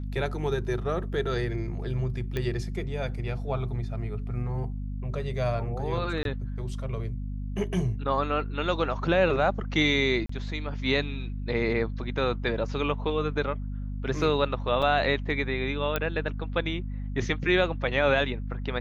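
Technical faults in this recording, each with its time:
hum 50 Hz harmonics 5 -33 dBFS
2.37 pop -17 dBFS
6.23–6.25 gap 22 ms
10.26–10.29 gap 34 ms
14.82–14.83 gap 5.7 ms
15.96 pop -12 dBFS

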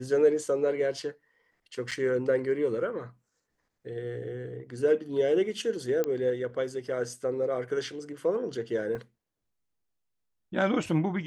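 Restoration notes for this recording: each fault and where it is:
1.91–1.92 gap 6.1 ms
6.04 pop -16 dBFS
8.95 gap 2.5 ms

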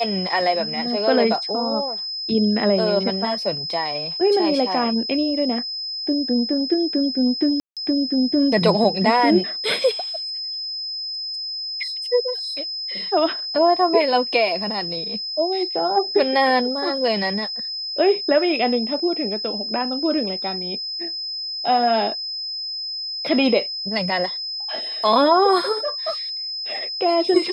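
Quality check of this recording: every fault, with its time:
tone 5100 Hz -26 dBFS
7.6–7.77 gap 0.167 s

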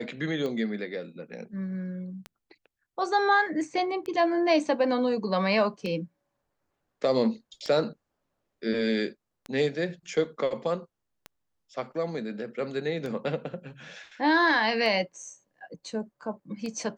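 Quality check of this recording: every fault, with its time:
tick 33 1/3 rpm -22 dBFS

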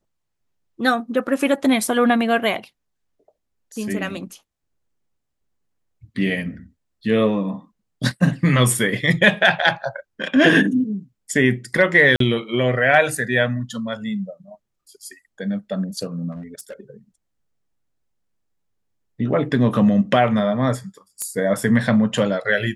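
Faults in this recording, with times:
12.16–12.2 gap 43 ms
16.31–16.8 clipped -29 dBFS
21.22 pop -13 dBFS

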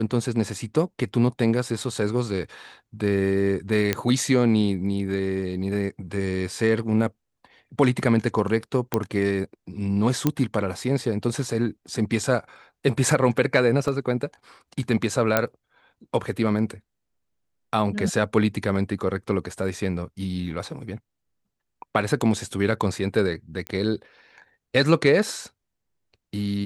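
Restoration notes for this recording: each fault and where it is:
3.93 pop -7 dBFS
8.94 pop -8 dBFS
10.27 pop -7 dBFS
13.88 gap 2.4 ms
15.37 pop -4 dBFS
23.67 pop -16 dBFS

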